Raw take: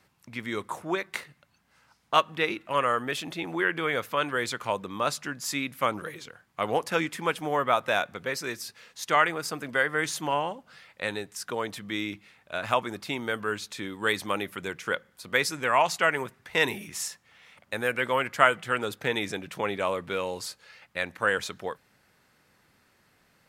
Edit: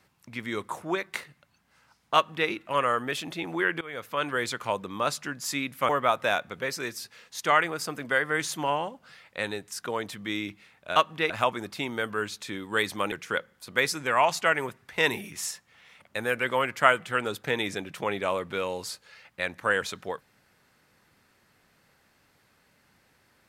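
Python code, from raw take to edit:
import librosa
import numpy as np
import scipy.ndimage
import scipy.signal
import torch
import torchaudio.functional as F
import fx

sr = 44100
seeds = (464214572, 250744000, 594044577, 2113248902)

y = fx.edit(x, sr, fx.duplicate(start_s=2.15, length_s=0.34, to_s=12.6),
    fx.fade_in_from(start_s=3.81, length_s=0.48, floor_db=-19.5),
    fx.cut(start_s=5.89, length_s=1.64),
    fx.cut(start_s=14.42, length_s=0.27), tone=tone)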